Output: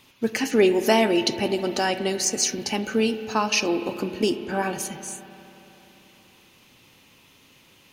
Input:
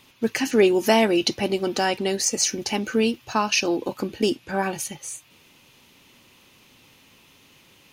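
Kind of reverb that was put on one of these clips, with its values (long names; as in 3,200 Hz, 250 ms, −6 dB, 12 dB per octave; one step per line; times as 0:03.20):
spring reverb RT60 3.4 s, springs 32/48 ms, chirp 35 ms, DRR 10 dB
level −1 dB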